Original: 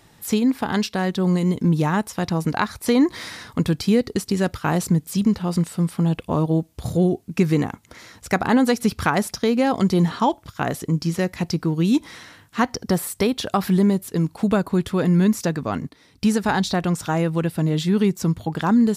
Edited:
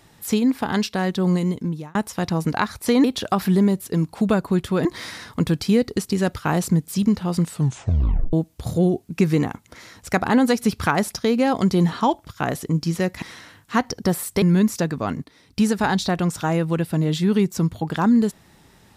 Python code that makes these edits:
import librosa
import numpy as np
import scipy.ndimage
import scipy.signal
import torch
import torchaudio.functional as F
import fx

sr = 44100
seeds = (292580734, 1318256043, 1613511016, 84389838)

y = fx.edit(x, sr, fx.fade_out_span(start_s=1.34, length_s=0.61),
    fx.tape_stop(start_s=5.71, length_s=0.81),
    fx.cut(start_s=11.41, length_s=0.65),
    fx.move(start_s=13.26, length_s=1.81, to_s=3.04), tone=tone)